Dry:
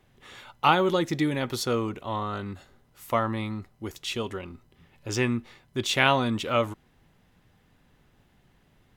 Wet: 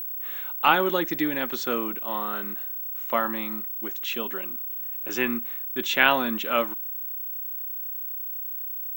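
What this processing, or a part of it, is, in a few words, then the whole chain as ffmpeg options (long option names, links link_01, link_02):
old television with a line whistle: -af "highpass=frequency=200:width=0.5412,highpass=frequency=200:width=1.3066,equalizer=frequency=440:width_type=q:width=4:gain=-3,equalizer=frequency=1600:width_type=q:width=4:gain=7,equalizer=frequency=2700:width_type=q:width=4:gain=3,equalizer=frequency=4800:width_type=q:width=4:gain=-7,lowpass=frequency=7100:width=0.5412,lowpass=frequency=7100:width=1.3066,aeval=exprs='val(0)+0.0316*sin(2*PI*15734*n/s)':channel_layout=same"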